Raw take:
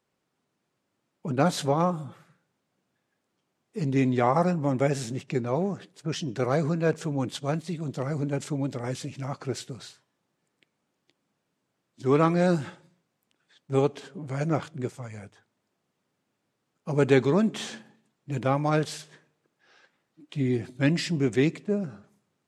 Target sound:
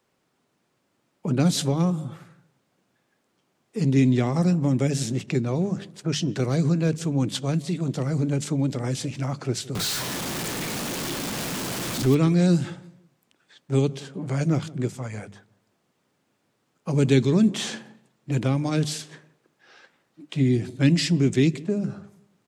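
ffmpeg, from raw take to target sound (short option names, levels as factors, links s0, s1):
-filter_complex "[0:a]asettb=1/sr,asplit=3[s0][s1][s2];[s0]atrim=end=9.754[s3];[s1]atrim=start=9.75:end=12.15,asetpts=PTS-STARTPTS,afade=t=in:d=0.004:c=qsin,afade=t=out:st=2.396:d=0.004:c=qsin,aeval=exprs='val(0)+0.5*0.0355*sgn(val(0))':c=same[s4];[s2]atrim=start=12.146[s5];[s3][s4]acrossfade=d=0.004:c1=hsin:c2=qsin[s6];[s6][s5]acrossfade=d=0.004:c1=qsin:c2=hsin,bandreject=f=50:t=h:w=6,bandreject=f=100:t=h:w=6,bandreject=f=150:t=h:w=6,bandreject=f=200:t=h:w=6,acrossover=split=320|2700[s7][s8][s9];[s8]acompressor=threshold=0.01:ratio=6[s10];[s7][s10][s9]amix=inputs=3:normalize=0,asplit=2[s11][s12];[s12]adelay=168,lowpass=f=940:p=1,volume=0.106,asplit=2[s13][s14];[s14]adelay=168,lowpass=f=940:p=1,volume=0.32,asplit=2[s15][s16];[s16]adelay=168,lowpass=f=940:p=1,volume=0.32[s17];[s11][s13][s15][s17]amix=inputs=4:normalize=0,volume=2.24"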